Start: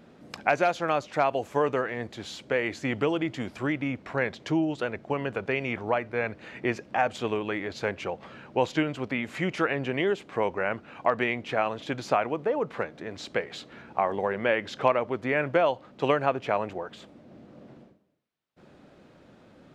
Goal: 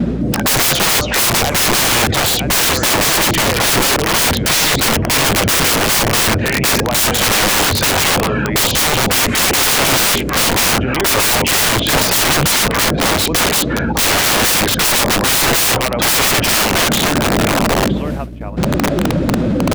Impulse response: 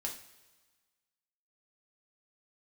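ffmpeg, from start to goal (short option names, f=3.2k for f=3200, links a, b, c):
-filter_complex "[0:a]afftdn=nr=13:nf=-45,bandreject=f=50:t=h:w=6,bandreject=f=100:t=h:w=6,areverse,acompressor=mode=upward:threshold=-32dB:ratio=2.5,areverse,lowshelf=f=85:g=6.5,aresample=32000,aresample=44100,lowshelf=f=200:g=5.5,asplit=2[a][b];[b]aecho=0:1:963|1926:0.0841|0.0194[c];[a][c]amix=inputs=2:normalize=0,aeval=exprs='val(0)+0.002*(sin(2*PI*60*n/s)+sin(2*PI*2*60*n/s)/2+sin(2*PI*3*60*n/s)/3+sin(2*PI*4*60*n/s)/4+sin(2*PI*5*60*n/s)/5)':c=same,agate=range=-54dB:threshold=-52dB:ratio=16:detection=peak,acontrast=37,aeval=exprs='(mod(26.6*val(0)+1,2)-1)/26.6':c=same,alimiter=level_in=33dB:limit=-1dB:release=50:level=0:latency=1,volume=-7.5dB"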